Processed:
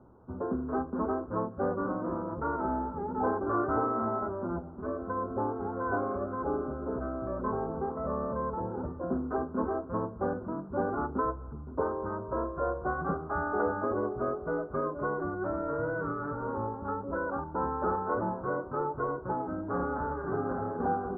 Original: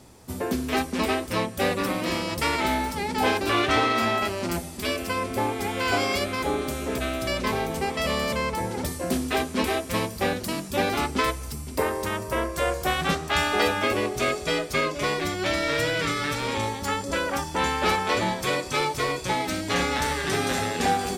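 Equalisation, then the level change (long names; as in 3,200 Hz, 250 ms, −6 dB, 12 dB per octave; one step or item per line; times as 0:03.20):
Chebyshev low-pass with heavy ripple 1,500 Hz, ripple 3 dB
−4.0 dB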